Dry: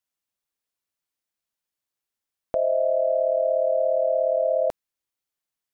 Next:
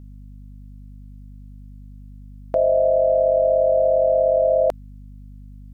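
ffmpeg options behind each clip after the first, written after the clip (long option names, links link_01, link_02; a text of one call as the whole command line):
ffmpeg -i in.wav -af "alimiter=limit=-19.5dB:level=0:latency=1:release=37,aeval=exprs='val(0)+0.00398*(sin(2*PI*50*n/s)+sin(2*PI*2*50*n/s)/2+sin(2*PI*3*50*n/s)/3+sin(2*PI*4*50*n/s)/4+sin(2*PI*5*50*n/s)/5)':channel_layout=same,volume=9dB" out.wav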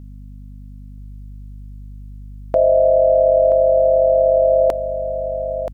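ffmpeg -i in.wav -af "aecho=1:1:978:0.316,volume=4dB" out.wav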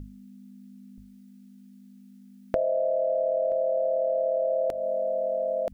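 ffmpeg -i in.wav -af "equalizer=frequency=1000:width_type=o:width=0.61:gain=-8.5,bandreject=frequency=50:width_type=h:width=6,bandreject=frequency=100:width_type=h:width=6,bandreject=frequency=150:width_type=h:width=6,acompressor=threshold=-24dB:ratio=5" out.wav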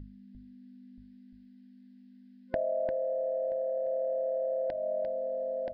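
ffmpeg -i in.wav -af "aresample=11025,aresample=44100,superequalizer=7b=0.501:10b=0.251:11b=2,aecho=1:1:348:0.501,volume=-4.5dB" out.wav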